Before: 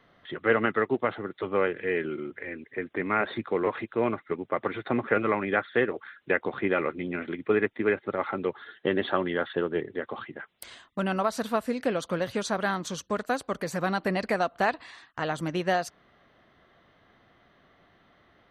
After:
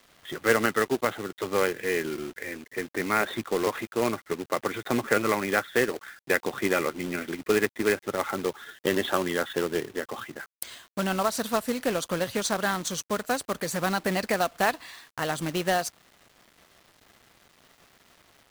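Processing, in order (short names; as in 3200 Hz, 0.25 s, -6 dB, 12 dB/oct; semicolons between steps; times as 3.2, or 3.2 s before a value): high shelf 5300 Hz +11.5 dB; companded quantiser 4-bit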